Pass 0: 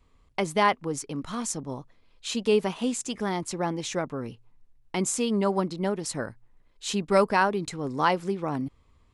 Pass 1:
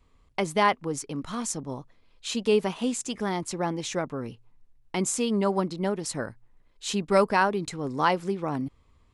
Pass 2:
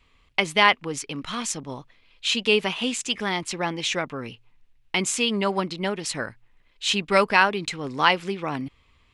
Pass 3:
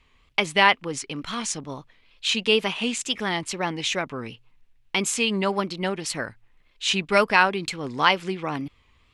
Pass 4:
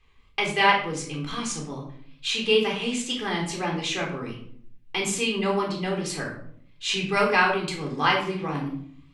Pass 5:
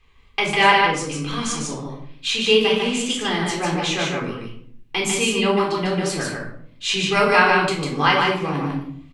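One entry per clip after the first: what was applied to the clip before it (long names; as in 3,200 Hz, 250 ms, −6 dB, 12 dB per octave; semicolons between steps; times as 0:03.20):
no processing that can be heard
parametric band 2,700 Hz +14.5 dB 1.7 octaves; level −1 dB
tape wow and flutter 79 cents
rectangular room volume 800 cubic metres, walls furnished, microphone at 3.8 metres; level −6.5 dB
single-tap delay 149 ms −3.5 dB; level +4 dB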